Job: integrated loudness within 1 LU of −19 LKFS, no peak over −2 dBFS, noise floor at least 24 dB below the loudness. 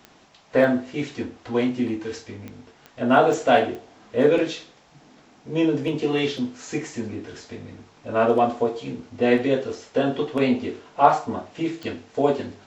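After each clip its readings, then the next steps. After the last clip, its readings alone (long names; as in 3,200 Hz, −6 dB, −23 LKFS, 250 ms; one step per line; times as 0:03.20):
number of clicks 7; integrated loudness −23.0 LKFS; sample peak −1.0 dBFS; target loudness −19.0 LKFS
→ click removal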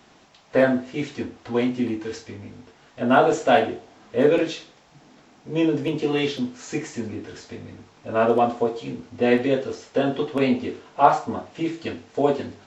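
number of clicks 0; integrated loudness −23.0 LKFS; sample peak −1.0 dBFS; target loudness −19.0 LKFS
→ level +4 dB
brickwall limiter −2 dBFS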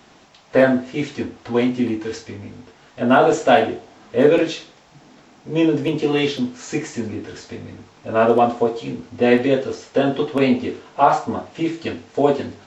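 integrated loudness −19.5 LKFS; sample peak −2.0 dBFS; background noise floor −50 dBFS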